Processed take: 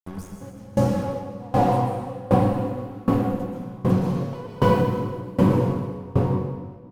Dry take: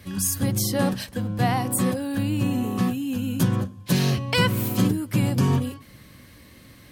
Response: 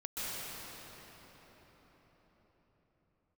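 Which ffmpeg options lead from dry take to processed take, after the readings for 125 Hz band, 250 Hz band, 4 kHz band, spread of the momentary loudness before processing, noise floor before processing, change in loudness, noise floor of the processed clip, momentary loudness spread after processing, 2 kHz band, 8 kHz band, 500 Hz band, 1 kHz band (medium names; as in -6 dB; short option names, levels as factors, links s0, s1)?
0.0 dB, 0.0 dB, -13.0 dB, 6 LU, -49 dBFS, 0.0 dB, -42 dBFS, 12 LU, -7.5 dB, under -15 dB, +6.5 dB, +5.0 dB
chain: -filter_complex "[0:a]acrossover=split=7700[s0][s1];[s1]acompressor=threshold=0.00631:ratio=6[s2];[s0][s2]amix=inputs=2:normalize=0,equalizer=f=500:t=o:w=1:g=11,equalizer=f=1000:t=o:w=1:g=9,equalizer=f=2000:t=o:w=1:g=-12,equalizer=f=4000:t=o:w=1:g=-9,equalizer=f=8000:t=o:w=1:g=-5,equalizer=f=16000:t=o:w=1:g=-4,aeval=exprs='sgn(val(0))*max(abs(val(0))-0.0237,0)':c=same,bandreject=f=580:w=17,aecho=1:1:544:0.251[s3];[1:a]atrim=start_sample=2205[s4];[s3][s4]afir=irnorm=-1:irlink=0,areverse,acompressor=mode=upward:threshold=0.112:ratio=2.5,areverse,lowshelf=f=66:g=10,aeval=exprs='val(0)*pow(10,-24*if(lt(mod(1.3*n/s,1),2*abs(1.3)/1000),1-mod(1.3*n/s,1)/(2*abs(1.3)/1000),(mod(1.3*n/s,1)-2*abs(1.3)/1000)/(1-2*abs(1.3)/1000))/20)':c=same"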